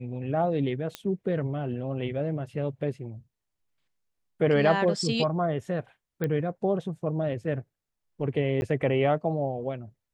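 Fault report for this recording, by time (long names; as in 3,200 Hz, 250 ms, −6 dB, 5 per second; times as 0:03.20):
0:00.95: click −17 dBFS
0:06.24: click −17 dBFS
0:08.61–0:08.62: drop-out 11 ms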